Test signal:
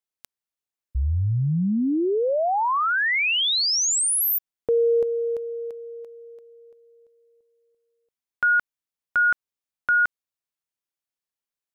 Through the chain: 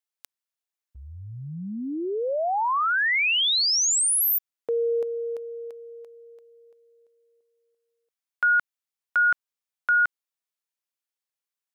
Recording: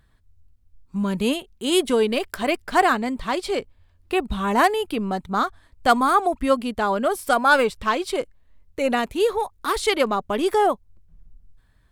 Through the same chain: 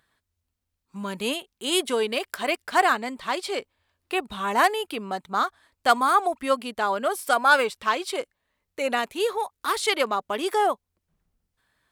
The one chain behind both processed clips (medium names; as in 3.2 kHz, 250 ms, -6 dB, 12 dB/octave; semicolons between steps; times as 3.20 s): high-pass 660 Hz 6 dB/octave